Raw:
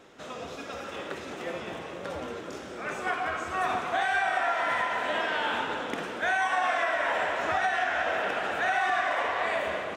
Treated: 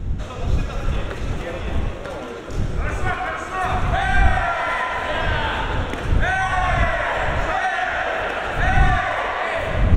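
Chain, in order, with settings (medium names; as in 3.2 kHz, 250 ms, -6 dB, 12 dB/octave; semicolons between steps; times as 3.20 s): wind noise 81 Hz -28 dBFS; band-stop 4.9 kHz, Q 11; trim +5.5 dB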